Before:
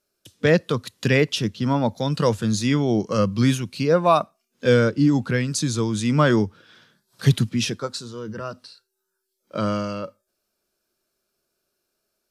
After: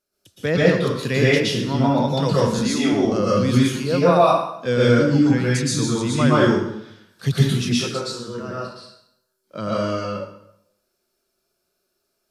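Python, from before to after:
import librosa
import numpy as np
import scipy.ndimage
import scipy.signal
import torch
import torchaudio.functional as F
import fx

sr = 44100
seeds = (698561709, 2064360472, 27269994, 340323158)

y = fx.steep_highpass(x, sr, hz=180.0, slope=36, at=(2.47, 2.93))
y = fx.rev_plate(y, sr, seeds[0], rt60_s=0.75, hf_ratio=0.85, predelay_ms=105, drr_db=-7.0)
y = F.gain(torch.from_numpy(y), -5.0).numpy()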